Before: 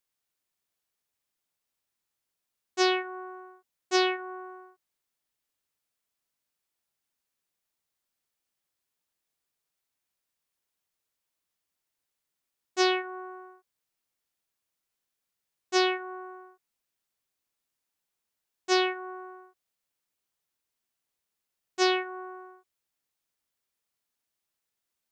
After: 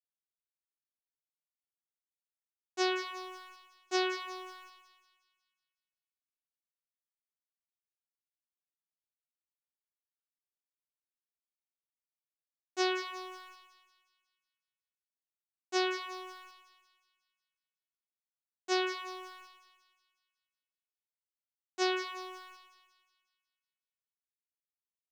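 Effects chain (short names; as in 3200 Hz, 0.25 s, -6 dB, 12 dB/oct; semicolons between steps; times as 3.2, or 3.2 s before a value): sample gate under -47.5 dBFS; split-band echo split 1800 Hz, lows 0.118 s, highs 0.182 s, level -9.5 dB; gain -6.5 dB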